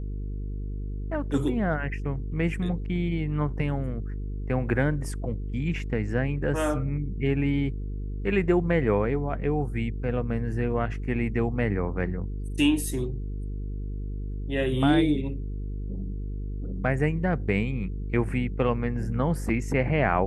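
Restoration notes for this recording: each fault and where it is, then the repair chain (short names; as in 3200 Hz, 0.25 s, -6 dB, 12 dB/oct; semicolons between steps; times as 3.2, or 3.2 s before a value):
buzz 50 Hz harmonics 9 -32 dBFS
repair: de-hum 50 Hz, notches 9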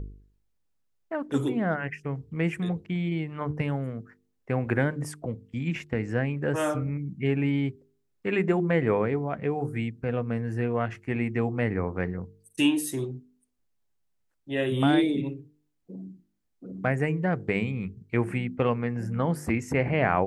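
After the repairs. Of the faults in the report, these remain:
none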